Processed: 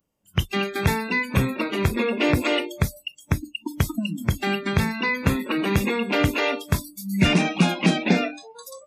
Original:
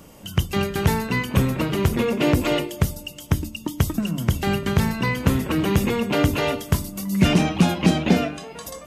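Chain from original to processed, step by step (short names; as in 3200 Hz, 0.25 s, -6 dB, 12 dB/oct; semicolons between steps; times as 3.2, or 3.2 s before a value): spectral noise reduction 29 dB; dynamic EQ 2300 Hz, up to +6 dB, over -42 dBFS, Q 0.92; gain -2 dB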